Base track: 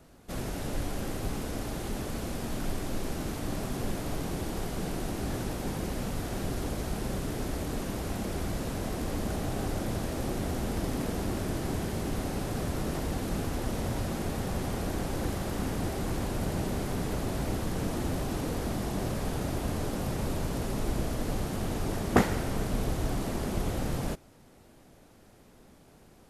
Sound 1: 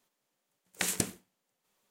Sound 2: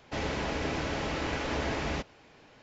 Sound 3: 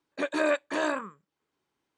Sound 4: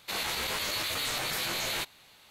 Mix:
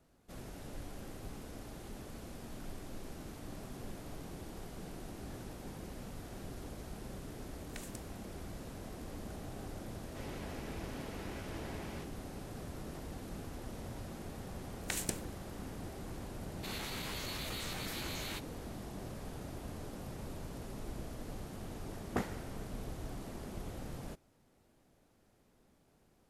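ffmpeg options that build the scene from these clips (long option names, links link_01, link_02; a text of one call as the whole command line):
ffmpeg -i bed.wav -i cue0.wav -i cue1.wav -i cue2.wav -i cue3.wav -filter_complex "[1:a]asplit=2[link_01][link_02];[0:a]volume=-13dB[link_03];[link_01]acompressor=threshold=-57dB:ratio=1.5:attack=38:release=875:knee=1:detection=peak,atrim=end=1.9,asetpts=PTS-STARTPTS,volume=-10.5dB,afade=type=in:duration=0.004:curve=hsin,afade=type=out:start_time=1.896:duration=0.004:curve=hsin,adelay=6950[link_04];[2:a]atrim=end=2.62,asetpts=PTS-STARTPTS,volume=-16dB,afade=type=in:duration=0.004:curve=hsin,afade=type=out:start_time=2.616:duration=0.004:curve=hsin,adelay=10030[link_05];[link_02]atrim=end=1.9,asetpts=PTS-STARTPTS,volume=-6.5dB,afade=type=in:duration=0.004:curve=hsin,afade=type=out:start_time=1.896:duration=0.004:curve=hsin,adelay=14090[link_06];[4:a]atrim=end=2.3,asetpts=PTS-STARTPTS,volume=-11dB,afade=type=in:duration=0.004:curve=hsin,afade=type=out:start_time=2.296:duration=0.004:curve=hsin,adelay=16550[link_07];[link_03][link_04][link_05][link_06][link_07]amix=inputs=5:normalize=0" out.wav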